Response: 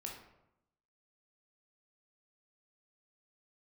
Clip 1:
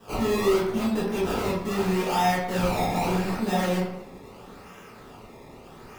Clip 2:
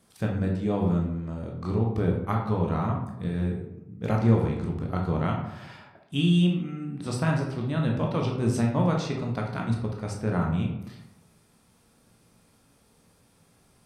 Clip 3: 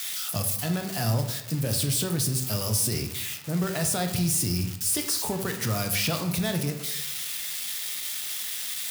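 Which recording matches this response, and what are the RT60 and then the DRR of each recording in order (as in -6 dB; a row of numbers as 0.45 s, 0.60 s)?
2; 0.85 s, 0.85 s, 0.85 s; -9.5 dB, -1.0 dB, 4.5 dB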